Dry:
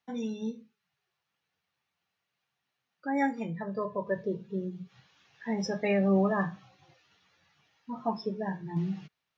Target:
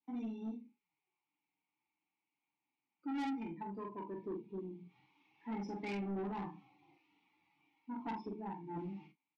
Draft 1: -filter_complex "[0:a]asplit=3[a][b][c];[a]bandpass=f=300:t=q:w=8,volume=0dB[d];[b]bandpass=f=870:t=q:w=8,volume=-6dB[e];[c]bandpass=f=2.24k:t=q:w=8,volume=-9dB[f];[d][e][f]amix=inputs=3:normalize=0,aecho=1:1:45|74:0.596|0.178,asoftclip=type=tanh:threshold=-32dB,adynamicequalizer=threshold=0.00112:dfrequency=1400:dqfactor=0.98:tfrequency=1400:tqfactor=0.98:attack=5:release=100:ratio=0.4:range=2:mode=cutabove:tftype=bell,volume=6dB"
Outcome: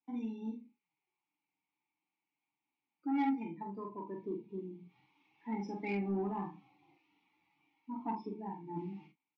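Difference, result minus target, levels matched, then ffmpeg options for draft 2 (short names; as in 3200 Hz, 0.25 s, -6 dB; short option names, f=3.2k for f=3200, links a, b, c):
soft clip: distortion -9 dB
-filter_complex "[0:a]asplit=3[a][b][c];[a]bandpass=f=300:t=q:w=8,volume=0dB[d];[b]bandpass=f=870:t=q:w=8,volume=-6dB[e];[c]bandpass=f=2.24k:t=q:w=8,volume=-9dB[f];[d][e][f]amix=inputs=3:normalize=0,aecho=1:1:45|74:0.596|0.178,asoftclip=type=tanh:threshold=-41.5dB,adynamicequalizer=threshold=0.00112:dfrequency=1400:dqfactor=0.98:tfrequency=1400:tqfactor=0.98:attack=5:release=100:ratio=0.4:range=2:mode=cutabove:tftype=bell,volume=6dB"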